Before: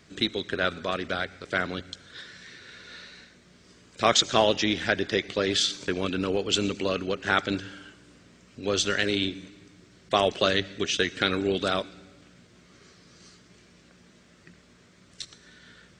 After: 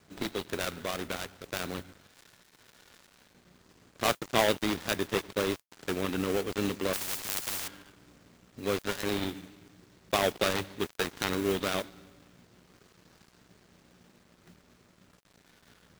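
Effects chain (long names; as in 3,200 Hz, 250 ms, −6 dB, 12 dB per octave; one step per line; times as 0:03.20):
gap after every zero crossing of 0.28 ms
noise that follows the level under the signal 18 dB
0:06.93–0:07.68: every bin compressed towards the loudest bin 10 to 1
level −2.5 dB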